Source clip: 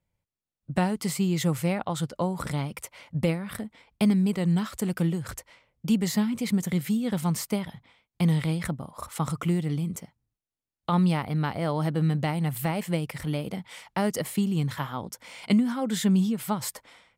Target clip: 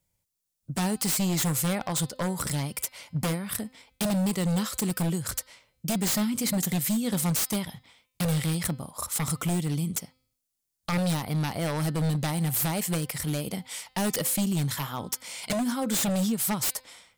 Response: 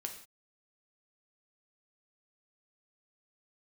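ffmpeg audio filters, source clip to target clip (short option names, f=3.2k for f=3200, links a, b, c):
-af "bass=f=250:g=0,treble=f=4k:g=14,aeval=exprs='0.0891*(abs(mod(val(0)/0.0891+3,4)-2)-1)':c=same,bandreject=f=257.1:t=h:w=4,bandreject=f=514.2:t=h:w=4,bandreject=f=771.3:t=h:w=4,bandreject=f=1.0284k:t=h:w=4,bandreject=f=1.2855k:t=h:w=4,bandreject=f=1.5426k:t=h:w=4,bandreject=f=1.7997k:t=h:w=4,bandreject=f=2.0568k:t=h:w=4,bandreject=f=2.3139k:t=h:w=4,bandreject=f=2.571k:t=h:w=4,bandreject=f=2.8281k:t=h:w=4,bandreject=f=3.0852k:t=h:w=4,bandreject=f=3.3423k:t=h:w=4,bandreject=f=3.5994k:t=h:w=4,bandreject=f=3.8565k:t=h:w=4,bandreject=f=4.1136k:t=h:w=4,bandreject=f=4.3707k:t=h:w=4,bandreject=f=4.6278k:t=h:w=4,bandreject=f=4.8849k:t=h:w=4,bandreject=f=5.142k:t=h:w=4"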